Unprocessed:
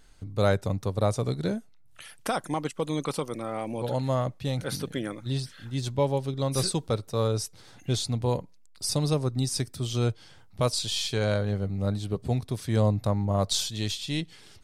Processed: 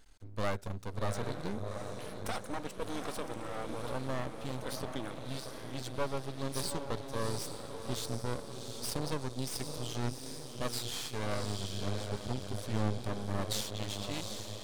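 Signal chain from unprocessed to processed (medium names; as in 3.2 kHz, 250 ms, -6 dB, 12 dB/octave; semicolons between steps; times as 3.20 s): peaking EQ 140 Hz -7 dB 0.61 oct; echo that smears into a reverb 736 ms, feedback 55%, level -7.5 dB; half-wave rectifier; trim -3.5 dB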